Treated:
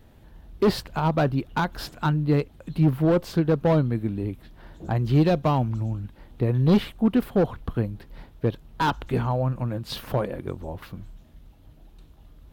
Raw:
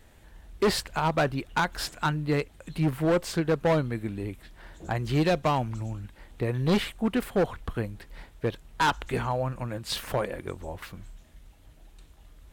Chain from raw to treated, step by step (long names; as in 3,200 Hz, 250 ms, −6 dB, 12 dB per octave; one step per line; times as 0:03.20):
octave-band graphic EQ 125/250/2,000/8,000 Hz +5/+4/−6/−11 dB
level +1.5 dB